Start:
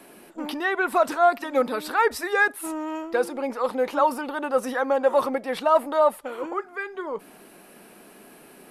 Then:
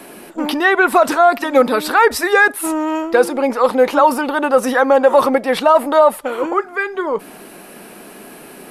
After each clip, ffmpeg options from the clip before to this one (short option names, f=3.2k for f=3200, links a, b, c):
-af "alimiter=level_in=12.5dB:limit=-1dB:release=50:level=0:latency=1,volume=-1dB"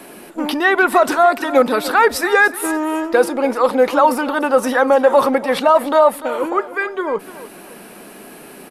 -af "aecho=1:1:294|588|882:0.168|0.0638|0.0242,volume=-1dB"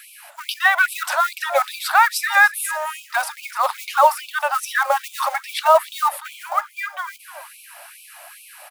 -af "acrusher=bits=6:mode=log:mix=0:aa=0.000001,afftfilt=real='re*gte(b*sr/1024,530*pow(2300/530,0.5+0.5*sin(2*PI*2.4*pts/sr)))':imag='im*gte(b*sr/1024,530*pow(2300/530,0.5+0.5*sin(2*PI*2.4*pts/sr)))':win_size=1024:overlap=0.75"